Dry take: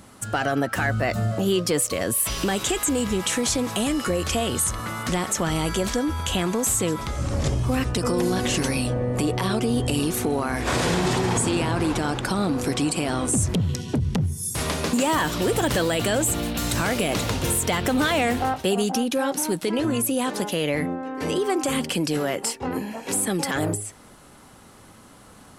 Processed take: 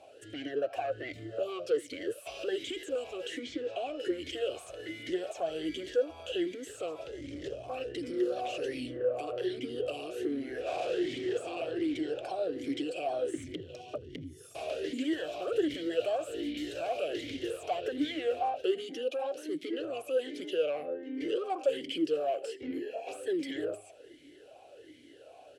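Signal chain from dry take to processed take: in parallel at 0 dB: compressor, threshold -35 dBFS, peak gain reduction 16 dB; on the sum: fixed phaser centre 500 Hz, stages 4; soft clip -23 dBFS, distortion -12 dB; 3.39–4 air absorption 94 m; on a send: echo 81 ms -22 dB; on the sum: vowel sweep a-i 1.3 Hz; gain +5 dB

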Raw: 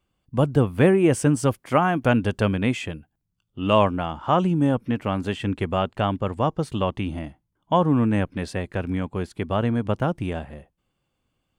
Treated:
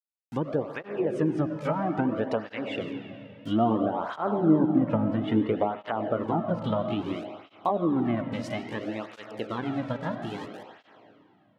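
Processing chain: gliding pitch shift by +4 st starting unshifted; Doppler pass-by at 4.61, 12 m/s, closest 17 m; low shelf 160 Hz -8 dB; in parallel at +1.5 dB: compressor, threshold -37 dBFS, peak gain reduction 19 dB; on the sum: sample gate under -42 dBFS; treble ducked by the level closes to 600 Hz, closed at -21.5 dBFS; on a send at -6 dB: reverb RT60 2.5 s, pre-delay 55 ms; on the sum: tape flanging out of phase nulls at 0.6 Hz, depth 2.9 ms; gain +3.5 dB

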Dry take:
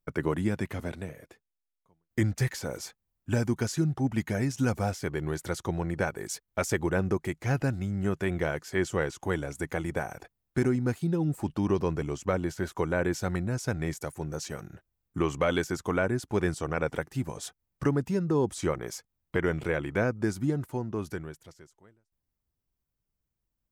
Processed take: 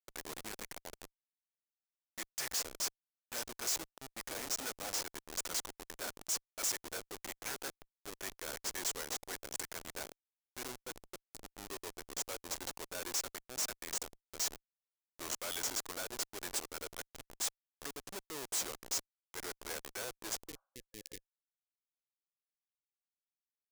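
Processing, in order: weighting filter ITU-R 468; Schmitt trigger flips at -30.5 dBFS; spectral repair 20.51–21.34, 520–1700 Hz both; transient shaper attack -3 dB, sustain -7 dB; tone controls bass -15 dB, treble +10 dB; gain -6 dB

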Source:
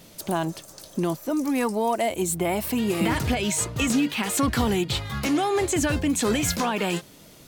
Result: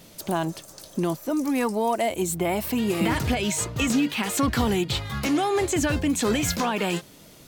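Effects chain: dynamic EQ 9700 Hz, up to -4 dB, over -41 dBFS, Q 1.9

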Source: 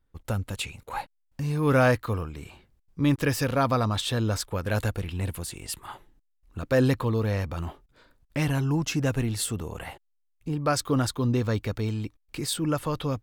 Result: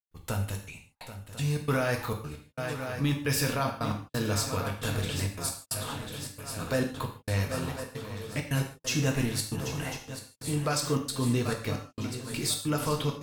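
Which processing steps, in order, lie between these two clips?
high shelf 2100 Hz +8.5 dB; on a send: swung echo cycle 1.045 s, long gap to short 3:1, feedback 61%, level -12.5 dB; on the sum: limiter -15.5 dBFS, peak gain reduction 8 dB; step gate ".xxxx.x..xxxxx" 134 bpm -60 dB; non-linear reverb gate 0.18 s falling, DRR 2 dB; gain -4.5 dB

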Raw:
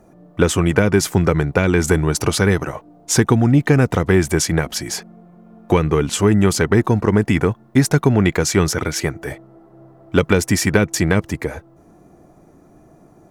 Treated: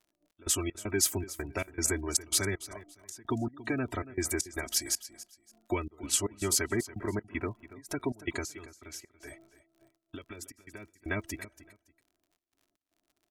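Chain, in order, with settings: gate -42 dBFS, range -20 dB; spectral gate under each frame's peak -30 dB strong; pre-emphasis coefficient 0.8; notch 990 Hz, Q 19; comb 3.1 ms, depth 98%; 8.44–11.06 compressor 16:1, threshold -36 dBFS, peak gain reduction 20.5 dB; crackle 66/s -49 dBFS; step gate "xxxx..xxx..x" 194 bpm -24 dB; feedback echo 0.282 s, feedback 24%, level -16.5 dB; gain -5 dB

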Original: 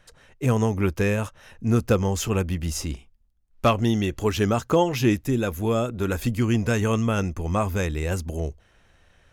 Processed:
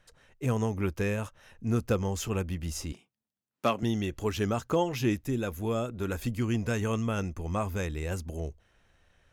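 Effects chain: 2.92–3.83 HPF 150 Hz 24 dB/oct; gain -7 dB

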